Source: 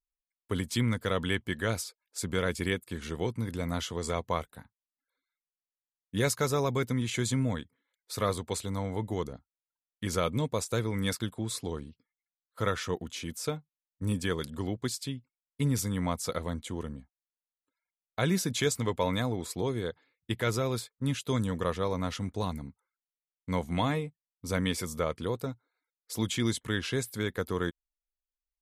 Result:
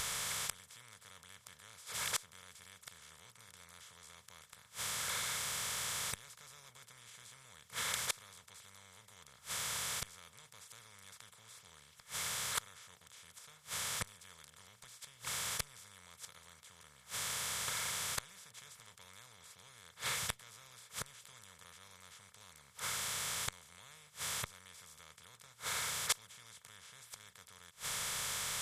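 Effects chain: spectral levelling over time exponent 0.2; inverted gate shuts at -14 dBFS, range -28 dB; amplifier tone stack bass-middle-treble 10-0-10

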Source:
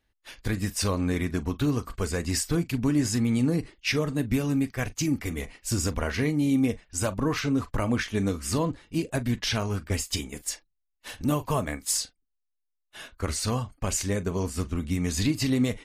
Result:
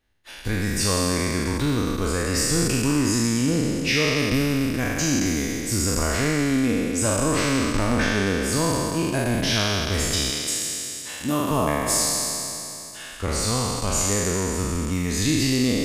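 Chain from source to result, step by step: spectral sustain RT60 3.00 s; 10.30–11.51 s: high-pass 190 Hz 6 dB/octave

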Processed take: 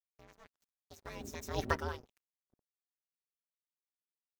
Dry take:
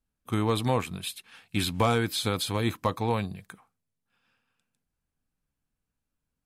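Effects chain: gliding tape speed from 162% -> 132%; wind noise 120 Hz -38 dBFS; Doppler pass-by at 1.70 s, 25 m/s, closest 2.3 m; comb 5.6 ms, depth 99%; crossover distortion -47 dBFS; ring modulator 240 Hz; trim -5 dB

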